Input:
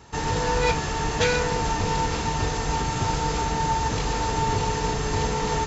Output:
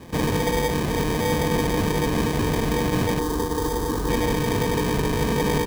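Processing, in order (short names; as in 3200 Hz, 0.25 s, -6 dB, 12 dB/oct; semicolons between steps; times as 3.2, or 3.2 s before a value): LPF 3500 Hz; bell 250 Hz +11.5 dB 1.8 oct; limiter -18 dBFS, peak gain reduction 10.5 dB; sample-and-hold 32×; 3.19–4.09 fixed phaser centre 630 Hz, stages 6; outdoor echo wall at 200 m, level -8 dB; gain +3 dB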